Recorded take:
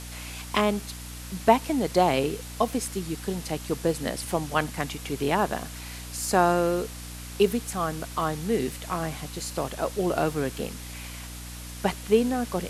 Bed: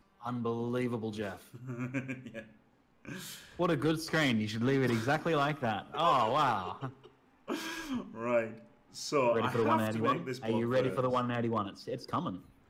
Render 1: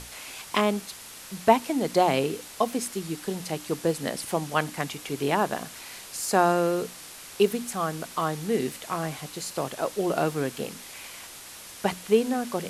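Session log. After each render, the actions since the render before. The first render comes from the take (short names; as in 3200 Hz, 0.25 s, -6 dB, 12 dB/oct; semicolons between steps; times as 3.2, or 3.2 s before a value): notches 60/120/180/240/300 Hz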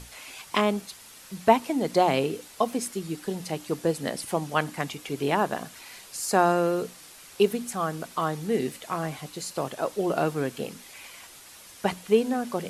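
denoiser 6 dB, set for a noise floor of -44 dBFS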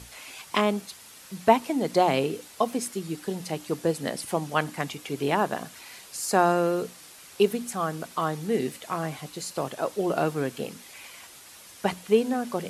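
HPF 53 Hz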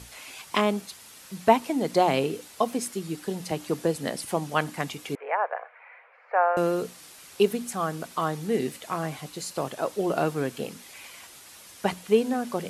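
3.51–3.96 three-band squash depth 40%; 5.15–6.57 Chebyshev band-pass 490–2300 Hz, order 4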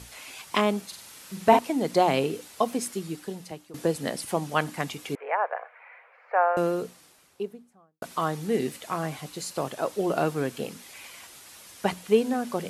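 0.86–1.59 flutter echo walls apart 7.8 m, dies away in 0.48 s; 2.97–3.74 fade out, to -21.5 dB; 6.34–8.02 studio fade out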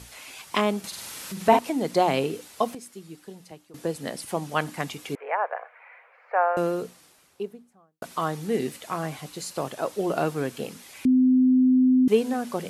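0.84–1.79 upward compressor, threshold -28 dBFS; 2.75–4.74 fade in, from -12.5 dB; 11.05–12.08 bleep 256 Hz -15 dBFS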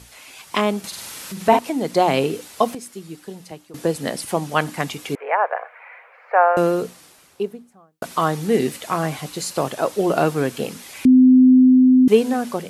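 AGC gain up to 8 dB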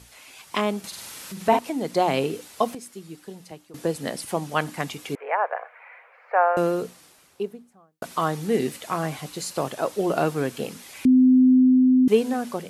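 gain -4.5 dB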